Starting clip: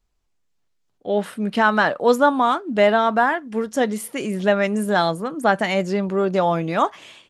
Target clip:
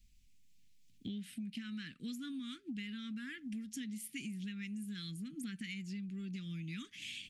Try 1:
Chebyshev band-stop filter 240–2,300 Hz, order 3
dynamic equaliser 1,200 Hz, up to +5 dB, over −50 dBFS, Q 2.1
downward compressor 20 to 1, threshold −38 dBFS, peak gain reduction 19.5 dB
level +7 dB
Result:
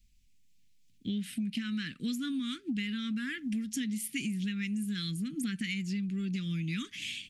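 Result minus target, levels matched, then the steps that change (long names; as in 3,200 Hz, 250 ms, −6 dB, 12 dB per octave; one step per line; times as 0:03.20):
downward compressor: peak gain reduction −9 dB
change: downward compressor 20 to 1, threshold −47.5 dBFS, peak gain reduction 28.5 dB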